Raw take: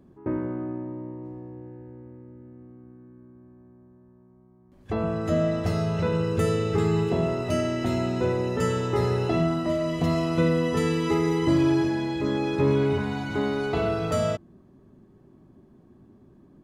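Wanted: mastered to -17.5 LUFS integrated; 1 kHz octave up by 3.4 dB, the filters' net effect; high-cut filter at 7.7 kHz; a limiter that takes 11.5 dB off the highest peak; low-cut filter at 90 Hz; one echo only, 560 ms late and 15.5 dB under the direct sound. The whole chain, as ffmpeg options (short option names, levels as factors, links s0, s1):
-af "highpass=90,lowpass=7700,equalizer=f=1000:t=o:g=4.5,alimiter=limit=0.0891:level=0:latency=1,aecho=1:1:560:0.168,volume=3.98"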